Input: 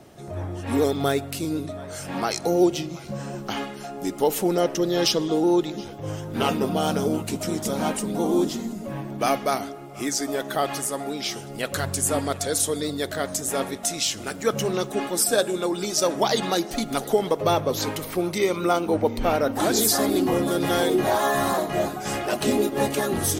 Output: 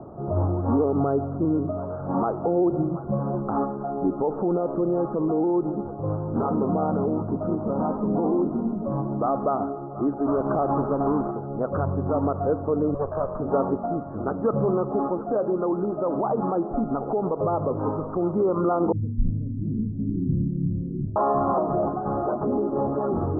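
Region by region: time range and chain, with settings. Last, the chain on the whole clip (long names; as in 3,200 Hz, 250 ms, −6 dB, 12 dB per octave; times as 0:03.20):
0:10.25–0:11.30: each half-wave held at its own peak + steady tone 2,800 Hz −29 dBFS
0:12.94–0:13.40: lower of the sound and its delayed copy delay 1.8 ms + Chebyshev low-pass with heavy ripple 7,300 Hz, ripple 3 dB
0:18.92–0:21.16: inverse Chebyshev band-stop filter 870–4,300 Hz, stop band 80 dB + double-tracking delay 46 ms −11 dB
whole clip: Butterworth low-pass 1,300 Hz 72 dB per octave; brickwall limiter −20.5 dBFS; speech leveller 2 s; level +5 dB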